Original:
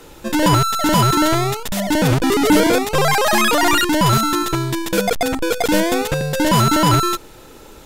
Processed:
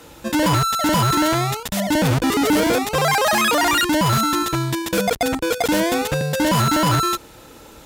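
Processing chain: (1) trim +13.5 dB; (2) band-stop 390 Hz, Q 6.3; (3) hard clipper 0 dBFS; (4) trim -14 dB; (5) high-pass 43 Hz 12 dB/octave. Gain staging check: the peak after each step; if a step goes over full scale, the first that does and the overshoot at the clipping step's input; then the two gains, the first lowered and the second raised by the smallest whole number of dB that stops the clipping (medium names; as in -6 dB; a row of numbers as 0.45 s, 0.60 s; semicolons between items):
+8.0 dBFS, +9.5 dBFS, 0.0 dBFS, -14.0 dBFS, -9.5 dBFS; step 1, 9.5 dB; step 1 +3.5 dB, step 4 -4 dB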